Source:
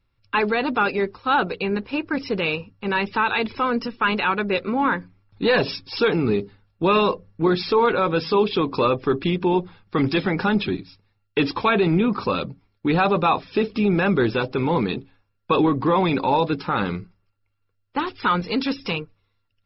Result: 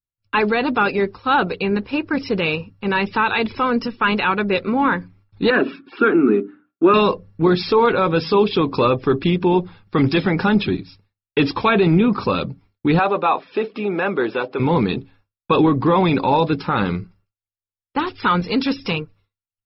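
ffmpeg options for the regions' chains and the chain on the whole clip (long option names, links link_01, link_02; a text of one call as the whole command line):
ffmpeg -i in.wav -filter_complex "[0:a]asettb=1/sr,asplit=3[link_01][link_02][link_03];[link_01]atrim=end=5.504[link_04];[link_02]atrim=start=5.5:end=6.94,asetpts=PTS-STARTPTS,afade=type=in:duration=0.004:curve=qsin,afade=type=out:start_time=1.436:duration=0.004:curve=qsin,highpass=frequency=230:width=0.5412,highpass=frequency=230:width=1.3066,equalizer=frequency=250:width_type=q:width=4:gain=8,equalizer=frequency=350:width_type=q:width=4:gain=7,equalizer=frequency=510:width_type=q:width=4:gain=-7,equalizer=frequency=880:width_type=q:width=4:gain=-8,equalizer=frequency=1400:width_type=q:width=4:gain=9,equalizer=frequency=2100:width_type=q:width=4:gain=-5,lowpass=frequency=2400:width=0.5412,lowpass=frequency=2400:width=1.3066,bandreject=frequency=60:width_type=h:width=6,bandreject=frequency=120:width_type=h:width=6,bandreject=frequency=180:width_type=h:width=6,bandreject=frequency=240:width_type=h:width=6,bandreject=frequency=300:width_type=h:width=6[link_05];[link_03]atrim=start=6.936[link_06];[link_04][link_05]acrossfade=duration=0.004:curve1=hsin:curve2=qsin[link_07];[link_07][link_06]acrossfade=duration=0.004:curve1=qsin:curve2=hsin,asettb=1/sr,asplit=3[link_08][link_09][link_10];[link_08]atrim=end=12.994[link_11];[link_09]atrim=start=12.99:end=14.6,asetpts=PTS-STARTPTS,afade=type=in:duration=0.004:curve=qsin,afade=type=out:start_time=1.606:duration=0.004:curve=qsin,highpass=390,lowpass=4700,highshelf=frequency=3700:gain=-10[link_12];[link_10]atrim=start=14.596[link_13];[link_11][link_12]acrossfade=duration=0.004:curve1=hsin:curve2=qsin[link_14];[link_14][link_13]acrossfade=duration=0.004:curve1=qsin:curve2=hsin,agate=range=-33dB:threshold=-51dB:ratio=3:detection=peak,equalizer=frequency=98:width=0.5:gain=3.5,volume=2.5dB" out.wav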